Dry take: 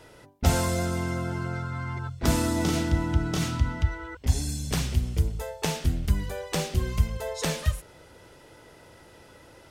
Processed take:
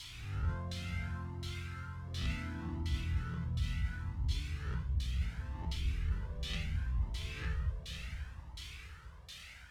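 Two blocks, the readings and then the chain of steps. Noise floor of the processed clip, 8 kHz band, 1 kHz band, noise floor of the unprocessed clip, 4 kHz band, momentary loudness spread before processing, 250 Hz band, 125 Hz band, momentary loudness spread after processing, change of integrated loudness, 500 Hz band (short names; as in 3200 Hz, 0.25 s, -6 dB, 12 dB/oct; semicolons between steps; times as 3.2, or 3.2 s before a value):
-52 dBFS, -20.0 dB, -16.5 dB, -53 dBFS, -9.0 dB, 6 LU, -16.0 dB, -9.5 dB, 10 LU, -11.5 dB, -22.5 dB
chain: spectral swells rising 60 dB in 0.86 s; passive tone stack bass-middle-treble 6-0-2; on a send: diffused feedback echo 0.557 s, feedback 51%, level -8 dB; on the sum: added noise violet -37 dBFS; LFO low-pass saw down 1.4 Hz 740–3800 Hz; low shelf 110 Hz -6 dB; reverse; compressor, threshold -34 dBFS, peak gain reduction 4.5 dB; reverse; cascading flanger rising 0.7 Hz; gain +6.5 dB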